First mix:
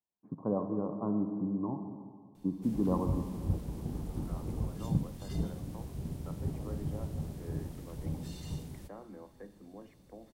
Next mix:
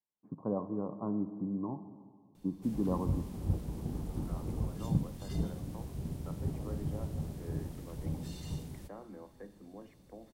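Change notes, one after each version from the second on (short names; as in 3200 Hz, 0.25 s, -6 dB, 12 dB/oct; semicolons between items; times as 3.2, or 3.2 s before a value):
first voice: send -7.5 dB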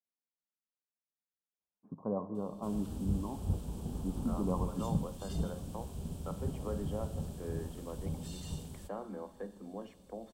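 first voice: entry +1.60 s; second voice +7.5 dB; master: add thirty-one-band EQ 125 Hz -9 dB, 315 Hz -7 dB, 2000 Hz -11 dB, 3150 Hz +5 dB, 8000 Hz +7 dB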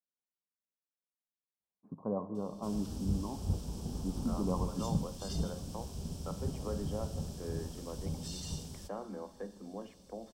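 background: add bell 5400 Hz +13 dB 0.59 oct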